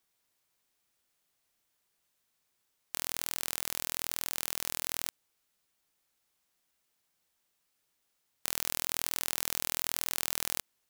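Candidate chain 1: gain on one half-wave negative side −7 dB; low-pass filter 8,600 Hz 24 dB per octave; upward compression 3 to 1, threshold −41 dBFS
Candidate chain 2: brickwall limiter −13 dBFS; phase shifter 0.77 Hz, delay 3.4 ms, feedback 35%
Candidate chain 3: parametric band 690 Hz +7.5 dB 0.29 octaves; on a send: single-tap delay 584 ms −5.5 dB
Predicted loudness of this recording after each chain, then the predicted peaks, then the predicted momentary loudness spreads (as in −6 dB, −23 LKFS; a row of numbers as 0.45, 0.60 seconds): −37.5, −40.0, −32.5 LKFS; −12.0, −13.0, −4.0 dBFS; 21, 3, 9 LU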